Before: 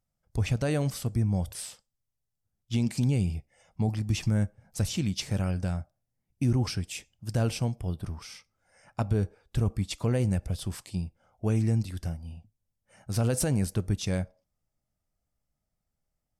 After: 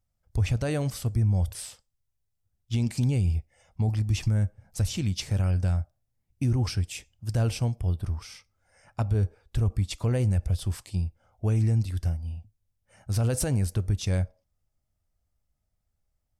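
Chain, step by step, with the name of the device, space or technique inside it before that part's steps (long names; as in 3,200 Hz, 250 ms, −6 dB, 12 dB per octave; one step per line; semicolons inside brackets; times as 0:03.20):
car stereo with a boomy subwoofer (low shelf with overshoot 120 Hz +6 dB, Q 1.5; brickwall limiter −16.5 dBFS, peak gain reduction 4 dB)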